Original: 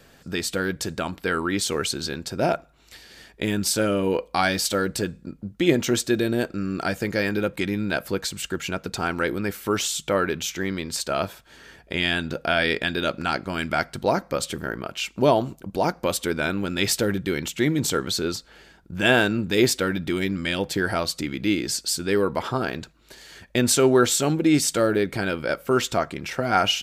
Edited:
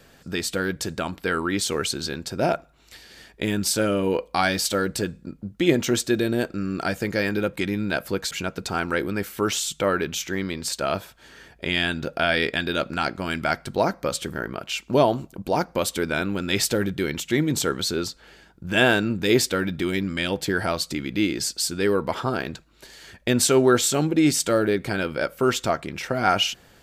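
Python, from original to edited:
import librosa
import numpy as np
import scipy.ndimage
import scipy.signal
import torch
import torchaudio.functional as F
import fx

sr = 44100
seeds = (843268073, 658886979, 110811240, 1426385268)

y = fx.edit(x, sr, fx.cut(start_s=8.31, length_s=0.28), tone=tone)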